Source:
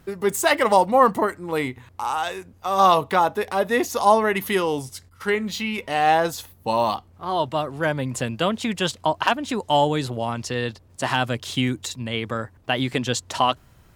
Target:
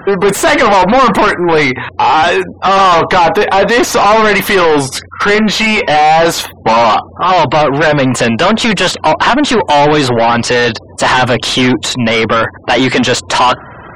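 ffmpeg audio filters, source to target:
ffmpeg -i in.wav -filter_complex "[0:a]acontrast=52,asplit=2[link_01][link_02];[link_02]highpass=frequency=720:poles=1,volume=34dB,asoftclip=type=tanh:threshold=-1dB[link_03];[link_01][link_03]amix=inputs=2:normalize=0,lowpass=frequency=2400:poles=1,volume=-6dB,afftfilt=real='re*gte(hypot(re,im),0.0501)':imag='im*gte(hypot(re,im),0.0501)':win_size=1024:overlap=0.75" out.wav

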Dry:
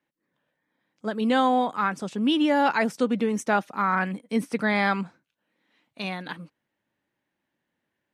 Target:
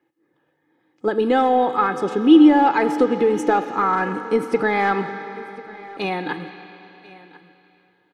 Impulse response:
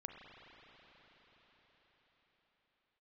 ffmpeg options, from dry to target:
-filter_complex "[0:a]asoftclip=type=hard:threshold=-13.5dB,acompressor=threshold=-23dB:ratio=6,highpass=99,asplit=2[link_01][link_02];[link_02]aemphasis=mode=production:type=75fm[link_03];[1:a]atrim=start_sample=2205,asetrate=70560,aresample=44100[link_04];[link_03][link_04]afir=irnorm=-1:irlink=0,volume=3dB[link_05];[link_01][link_05]amix=inputs=2:normalize=0,acontrast=84,lowpass=frequency=1100:poles=1,equalizer=frequency=320:width=6.8:gain=9.5,aecho=1:1:2.4:0.61,aecho=1:1:1043:0.0891"

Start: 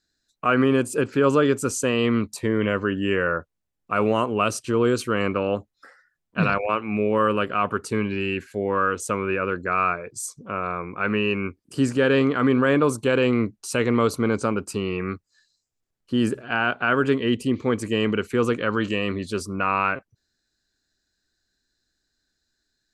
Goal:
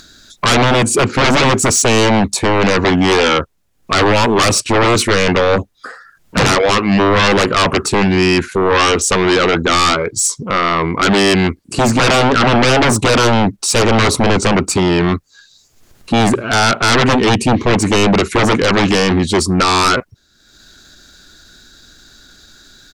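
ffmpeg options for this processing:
ffmpeg -i in.wav -af "asetrate=41625,aresample=44100,atempo=1.05946,aeval=exprs='0.447*sin(PI/2*5.62*val(0)/0.447)':channel_layout=same,acompressor=mode=upward:threshold=-29dB:ratio=2.5,volume=-1dB" out.wav

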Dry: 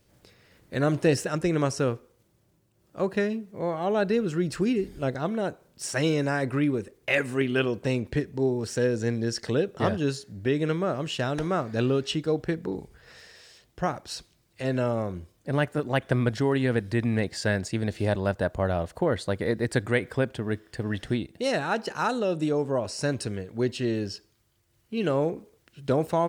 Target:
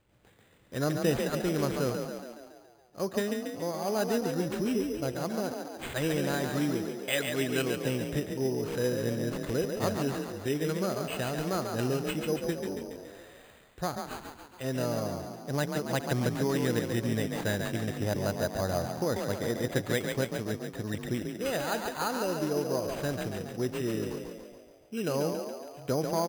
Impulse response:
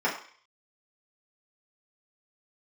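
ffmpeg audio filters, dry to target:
-filter_complex "[0:a]asplit=9[link_01][link_02][link_03][link_04][link_05][link_06][link_07][link_08][link_09];[link_02]adelay=140,afreqshift=36,volume=-5.5dB[link_10];[link_03]adelay=280,afreqshift=72,volume=-10.2dB[link_11];[link_04]adelay=420,afreqshift=108,volume=-15dB[link_12];[link_05]adelay=560,afreqshift=144,volume=-19.7dB[link_13];[link_06]adelay=700,afreqshift=180,volume=-24.4dB[link_14];[link_07]adelay=840,afreqshift=216,volume=-29.2dB[link_15];[link_08]adelay=980,afreqshift=252,volume=-33.9dB[link_16];[link_09]adelay=1120,afreqshift=288,volume=-38.6dB[link_17];[link_01][link_10][link_11][link_12][link_13][link_14][link_15][link_16][link_17]amix=inputs=9:normalize=0,acrusher=samples=8:mix=1:aa=0.000001,volume=-5.5dB"

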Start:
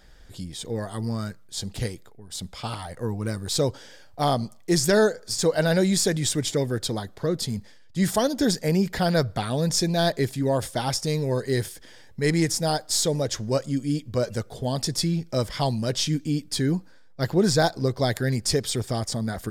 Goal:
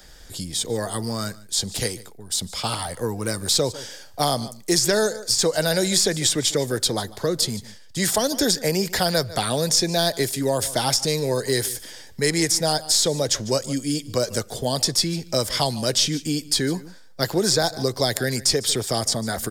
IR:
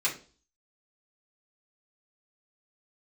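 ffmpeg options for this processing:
-filter_complex "[0:a]bass=frequency=250:gain=-3,treble=frequency=4000:gain=9,asplit=2[link_01][link_02];[link_02]aecho=0:1:147:0.0891[link_03];[link_01][link_03]amix=inputs=2:normalize=0,acrossover=split=130|310|4400[link_04][link_05][link_06][link_07];[link_04]acompressor=threshold=-41dB:ratio=4[link_08];[link_05]acompressor=threshold=-39dB:ratio=4[link_09];[link_06]acompressor=threshold=-26dB:ratio=4[link_10];[link_07]acompressor=threshold=-30dB:ratio=4[link_11];[link_08][link_09][link_10][link_11]amix=inputs=4:normalize=0,volume=6dB"

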